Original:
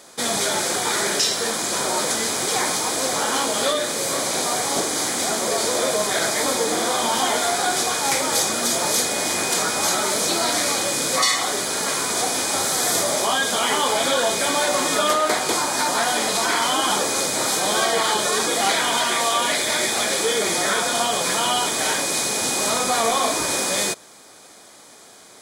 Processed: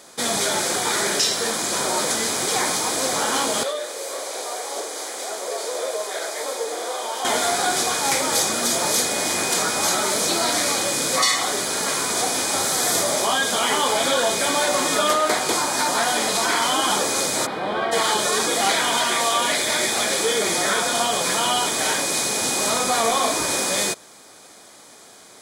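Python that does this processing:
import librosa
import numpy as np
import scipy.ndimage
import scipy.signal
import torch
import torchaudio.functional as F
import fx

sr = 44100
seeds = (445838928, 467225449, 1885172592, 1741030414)

y = fx.ladder_highpass(x, sr, hz=380.0, resonance_pct=40, at=(3.63, 7.25))
y = fx.air_absorb(y, sr, metres=460.0, at=(17.45, 17.91), fade=0.02)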